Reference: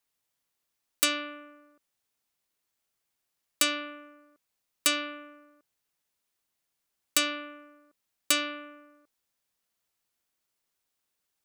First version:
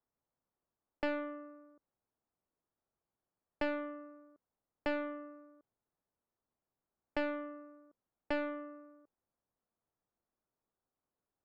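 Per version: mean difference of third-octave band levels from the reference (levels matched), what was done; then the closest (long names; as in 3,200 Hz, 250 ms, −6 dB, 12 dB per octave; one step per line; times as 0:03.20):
6.5 dB: Bessel low-pass filter 870 Hz, order 4
highs frequency-modulated by the lows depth 0.58 ms
level +1.5 dB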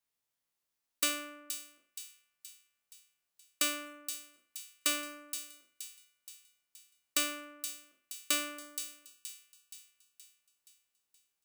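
8.5 dB: peak hold with a decay on every bin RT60 0.42 s
on a send: delay with a high-pass on its return 473 ms, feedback 51%, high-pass 4,200 Hz, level −7 dB
on the sum: level −7 dB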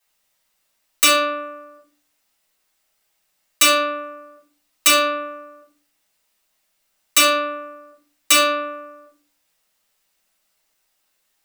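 4.5 dB: low-shelf EQ 330 Hz −11.5 dB
rectangular room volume 220 cubic metres, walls furnished, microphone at 6.2 metres
level +3 dB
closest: third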